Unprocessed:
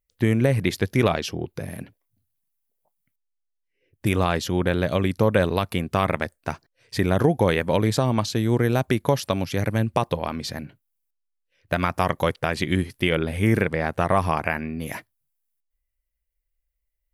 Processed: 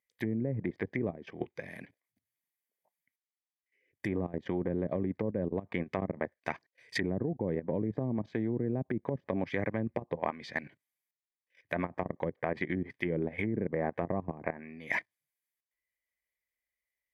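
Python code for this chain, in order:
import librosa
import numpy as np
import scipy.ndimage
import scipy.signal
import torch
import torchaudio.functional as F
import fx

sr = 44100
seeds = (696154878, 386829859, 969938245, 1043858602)

y = fx.highpass(x, sr, hz=190.0, slope=6)
y = fx.env_lowpass_down(y, sr, base_hz=320.0, full_db=-19.0)
y = fx.peak_eq(y, sr, hz=2000.0, db=11.0, octaves=0.68)
y = fx.level_steps(y, sr, step_db=15)
y = fx.notch_comb(y, sr, f0_hz=1400.0)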